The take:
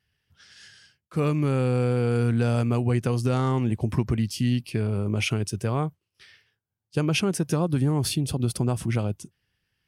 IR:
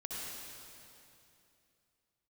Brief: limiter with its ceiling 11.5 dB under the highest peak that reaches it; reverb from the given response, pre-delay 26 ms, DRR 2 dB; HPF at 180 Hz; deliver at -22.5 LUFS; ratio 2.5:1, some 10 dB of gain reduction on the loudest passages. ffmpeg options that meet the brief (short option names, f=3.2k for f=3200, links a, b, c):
-filter_complex "[0:a]highpass=180,acompressor=threshold=-37dB:ratio=2.5,alimiter=level_in=9dB:limit=-24dB:level=0:latency=1,volume=-9dB,asplit=2[a][b];[1:a]atrim=start_sample=2205,adelay=26[c];[b][c]afir=irnorm=-1:irlink=0,volume=-3dB[d];[a][d]amix=inputs=2:normalize=0,volume=18dB"